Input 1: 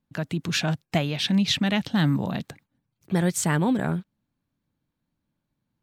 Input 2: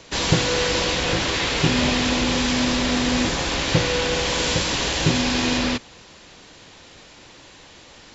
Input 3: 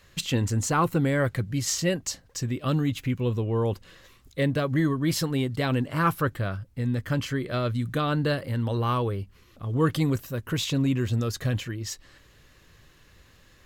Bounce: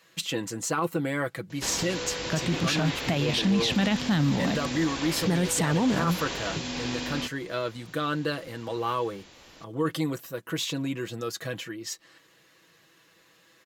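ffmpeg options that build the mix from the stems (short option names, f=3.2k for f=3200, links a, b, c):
-filter_complex "[0:a]adelay=2150,volume=2.5dB[a];[1:a]acrossover=split=110|2700[b][c][d];[b]acompressor=threshold=-41dB:ratio=4[e];[c]acompressor=threshold=-26dB:ratio=4[f];[d]acompressor=threshold=-31dB:ratio=4[g];[e][f][g]amix=inputs=3:normalize=0,adelay=1500,volume=-6.5dB[h];[2:a]highpass=250,aecho=1:1:6.1:0.59,volume=-2dB[i];[a][h][i]amix=inputs=3:normalize=0,alimiter=limit=-16.5dB:level=0:latency=1:release=19"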